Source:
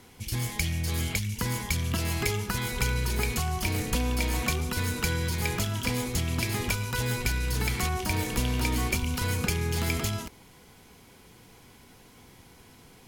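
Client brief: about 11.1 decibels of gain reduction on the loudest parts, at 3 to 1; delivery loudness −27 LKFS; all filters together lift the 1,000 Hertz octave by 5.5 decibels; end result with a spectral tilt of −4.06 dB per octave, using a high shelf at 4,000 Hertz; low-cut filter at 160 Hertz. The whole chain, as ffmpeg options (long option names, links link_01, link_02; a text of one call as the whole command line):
ffmpeg -i in.wav -af "highpass=160,equalizer=frequency=1000:width_type=o:gain=7,highshelf=frequency=4000:gain=-6.5,acompressor=threshold=-41dB:ratio=3,volume=13.5dB" out.wav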